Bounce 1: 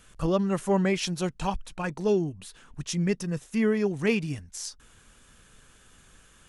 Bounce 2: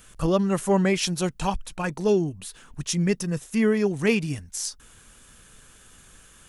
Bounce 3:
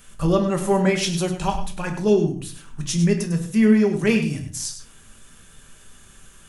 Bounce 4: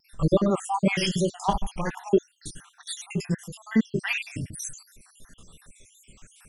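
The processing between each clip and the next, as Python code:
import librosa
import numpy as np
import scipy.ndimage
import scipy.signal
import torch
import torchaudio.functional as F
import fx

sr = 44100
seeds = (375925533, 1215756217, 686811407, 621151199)

y1 = fx.high_shelf(x, sr, hz=9300.0, db=10.0)
y1 = F.gain(torch.from_numpy(y1), 3.0).numpy()
y2 = y1 + 10.0 ** (-10.5 / 20.0) * np.pad(y1, (int(101 * sr / 1000.0), 0))[:len(y1)]
y2 = fx.room_shoebox(y2, sr, seeds[0], volume_m3=270.0, walls='furnished', distance_m=1.2)
y3 = fx.spec_dropout(y2, sr, seeds[1], share_pct=67)
y3 = fx.vibrato(y3, sr, rate_hz=2.7, depth_cents=51.0)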